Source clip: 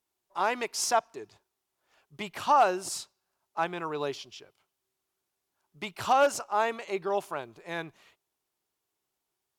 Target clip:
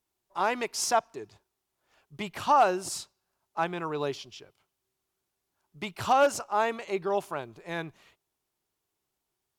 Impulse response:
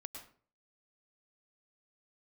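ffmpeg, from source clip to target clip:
-af "lowshelf=f=200:g=7.5"

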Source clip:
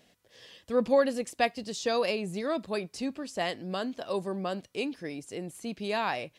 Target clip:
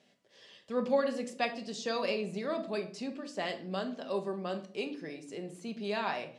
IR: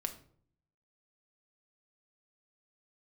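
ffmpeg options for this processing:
-filter_complex "[0:a]highpass=160,lowpass=7200[s0];[1:a]atrim=start_sample=2205[s1];[s0][s1]afir=irnorm=-1:irlink=0,volume=0.668"

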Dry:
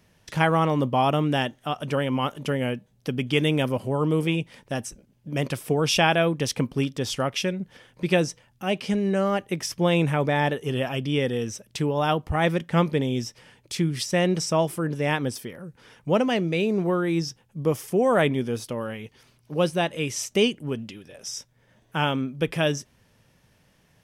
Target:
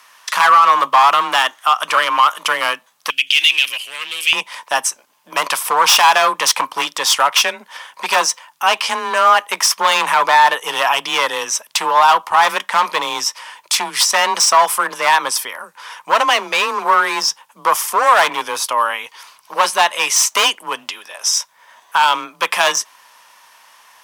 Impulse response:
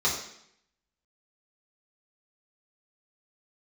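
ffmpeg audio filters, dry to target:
-af "highshelf=f=2400:g=7,asoftclip=type=hard:threshold=0.0944,afreqshift=25,asetnsamples=n=441:p=0,asendcmd='3.1 highpass f 2700;4.33 highpass f 1000',highpass=f=1100:t=q:w=4.9,alimiter=level_in=4.47:limit=0.891:release=50:level=0:latency=1,volume=0.891"

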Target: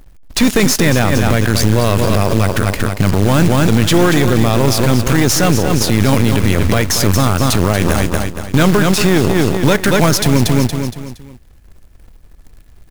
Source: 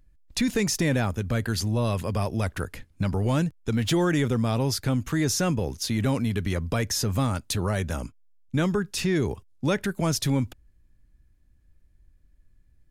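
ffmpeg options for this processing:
-filter_complex "[0:a]asplit=2[s0][s1];[s1]asetrate=35002,aresample=44100,atempo=1.25992,volume=0.178[s2];[s0][s2]amix=inputs=2:normalize=0,aeval=exprs='0.224*(cos(1*acos(clip(val(0)/0.224,-1,1)))-cos(1*PI/2))+0.0708*(cos(2*acos(clip(val(0)/0.224,-1,1)))-cos(2*PI/2))+0.0355*(cos(3*acos(clip(val(0)/0.224,-1,1)))-cos(3*PI/2))+0.00447*(cos(6*acos(clip(val(0)/0.224,-1,1)))-cos(6*PI/2))+0.00891*(cos(7*acos(clip(val(0)/0.224,-1,1)))-cos(7*PI/2))':c=same,asplit=2[s3][s4];[s4]asoftclip=type=hard:threshold=0.0631,volume=0.335[s5];[s3][s5]amix=inputs=2:normalize=0,acrusher=bits=3:mode=log:mix=0:aa=0.000001,asoftclip=type=tanh:threshold=0.2,aecho=1:1:233|466|699|932:0.316|0.114|0.041|0.0148,alimiter=level_in=20:limit=0.891:release=50:level=0:latency=1,volume=0.891"

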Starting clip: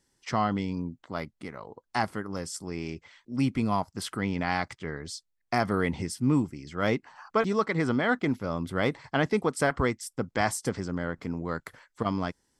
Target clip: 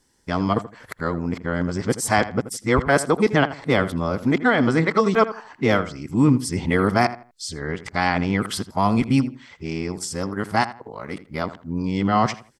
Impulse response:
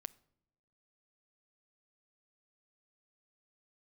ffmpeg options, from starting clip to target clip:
-filter_complex "[0:a]areverse,asplit=2[s0][s1];[s1]adelay=81,lowpass=f=2500:p=1,volume=0.2,asplit=2[s2][s3];[s3]adelay=81,lowpass=f=2500:p=1,volume=0.27,asplit=2[s4][s5];[s5]adelay=81,lowpass=f=2500:p=1,volume=0.27[s6];[s2][s4][s6]amix=inputs=3:normalize=0[s7];[s0][s7]amix=inputs=2:normalize=0,volume=2.37"

